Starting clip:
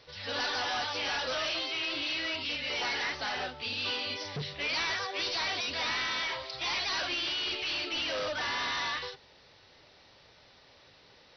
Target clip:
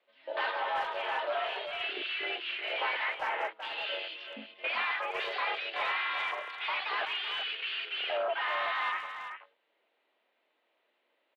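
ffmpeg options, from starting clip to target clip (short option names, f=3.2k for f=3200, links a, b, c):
-filter_complex "[0:a]aemphasis=mode=production:type=bsi,afwtdn=0.0224,asettb=1/sr,asplit=3[a][b][c];[a]atrim=end=0.514[d];[b]atrim=start=0.51:end=1.81,asetpts=PTS-STARTPTS,afade=t=in:d=0.004:c=qsin,afade=t=out:st=1.296:d=0.004:c=qsin,highshelf=f=2.2k:g=-6[e];[c]atrim=start=1.806[f];[d][e]acrossfade=d=0.004:c1=hsin:c2=qsin[g];[g][f]acrossfade=d=0.004:c1=qsin:c2=hsin,asplit=2[h][i];[i]adynamicsmooth=sensitivity=2:basefreq=670,volume=0.5dB[j];[h][j]amix=inputs=2:normalize=0,highpass=f=190:t=q:w=0.5412,highpass=f=190:t=q:w=1.307,lowpass=f=3k:t=q:w=0.5176,lowpass=f=3k:t=q:w=0.7071,lowpass=f=3k:t=q:w=1.932,afreqshift=72,asplit=2[k][l];[l]adelay=380,highpass=300,lowpass=3.4k,asoftclip=type=hard:threshold=-27.5dB,volume=-8dB[m];[k][m]amix=inputs=2:normalize=0"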